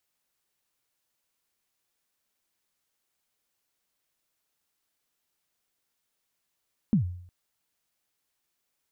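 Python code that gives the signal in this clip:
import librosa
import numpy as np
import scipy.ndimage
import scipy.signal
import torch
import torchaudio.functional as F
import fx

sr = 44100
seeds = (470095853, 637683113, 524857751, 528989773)

y = fx.drum_kick(sr, seeds[0], length_s=0.36, level_db=-16, start_hz=240.0, end_hz=89.0, sweep_ms=109.0, decay_s=0.63, click=False)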